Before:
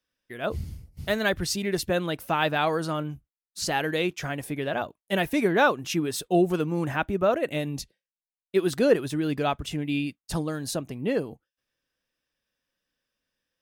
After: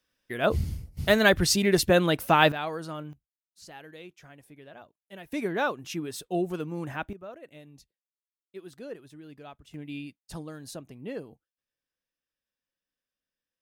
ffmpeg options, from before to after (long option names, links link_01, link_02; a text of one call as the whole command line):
ffmpeg -i in.wav -af "asetnsamples=nb_out_samples=441:pad=0,asendcmd='2.52 volume volume -8dB;3.13 volume volume -19.5dB;5.32 volume volume -7dB;7.13 volume volume -20dB;9.74 volume volume -10.5dB',volume=5dB" out.wav